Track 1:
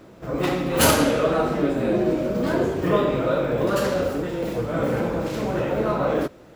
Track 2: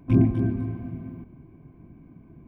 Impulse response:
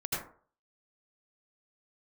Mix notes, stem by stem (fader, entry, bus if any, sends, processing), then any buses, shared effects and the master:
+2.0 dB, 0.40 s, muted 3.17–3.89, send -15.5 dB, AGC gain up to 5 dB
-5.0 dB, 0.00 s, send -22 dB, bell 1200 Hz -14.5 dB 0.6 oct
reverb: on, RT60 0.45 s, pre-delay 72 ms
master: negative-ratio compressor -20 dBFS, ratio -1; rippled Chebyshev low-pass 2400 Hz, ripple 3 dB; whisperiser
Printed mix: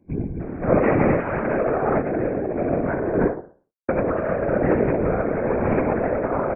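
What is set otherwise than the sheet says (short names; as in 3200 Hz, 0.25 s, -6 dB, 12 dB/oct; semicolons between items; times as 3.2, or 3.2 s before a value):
stem 2 -5.0 dB -> -13.0 dB; reverb return +8.5 dB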